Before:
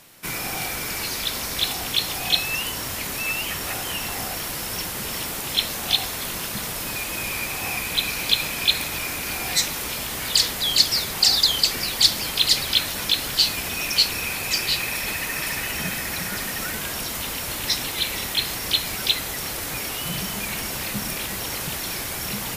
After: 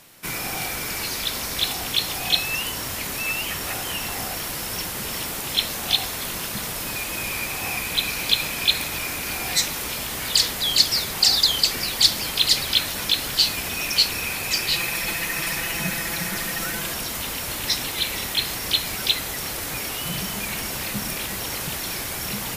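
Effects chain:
0:14.72–0:16.94: comb filter 5.9 ms, depth 53%

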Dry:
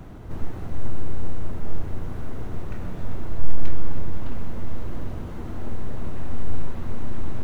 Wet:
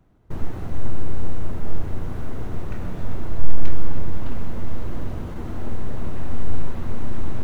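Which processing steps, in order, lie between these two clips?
noise gate with hold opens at −25 dBFS
level +2.5 dB

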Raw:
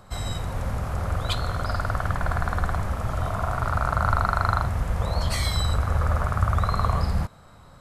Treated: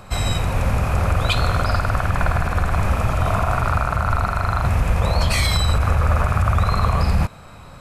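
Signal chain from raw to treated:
parametric band 2,500 Hz +12 dB 0.21 octaves
brickwall limiter −17.5 dBFS, peak gain reduction 10 dB
level +8.5 dB

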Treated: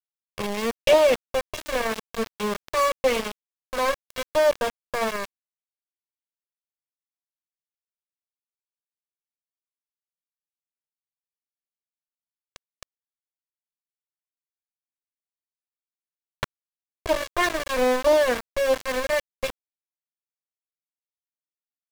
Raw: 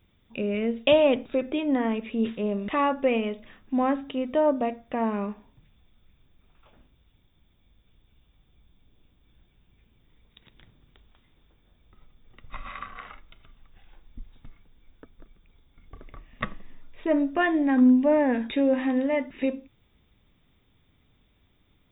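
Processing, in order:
lower of the sound and its delayed copy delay 1.8 ms
centre clipping without the shift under −25 dBFS
highs frequency-modulated by the lows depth 0.29 ms
level +2 dB

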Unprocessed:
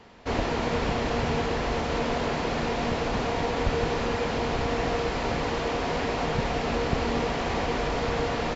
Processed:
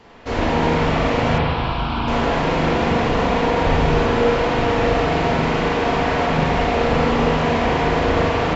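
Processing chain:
0:01.38–0:02.08: phaser with its sweep stopped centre 1,900 Hz, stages 6
spring reverb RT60 1.8 s, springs 38/44 ms, chirp 60 ms, DRR −5.5 dB
level +2.5 dB

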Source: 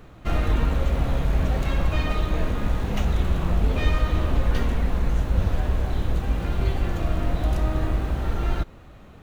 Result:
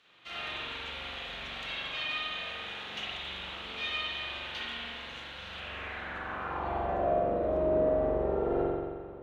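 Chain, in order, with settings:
spring reverb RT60 1.7 s, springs 43 ms, chirp 45 ms, DRR −7 dB
band-pass filter sweep 3,400 Hz → 460 Hz, 0:05.51–0:07.31

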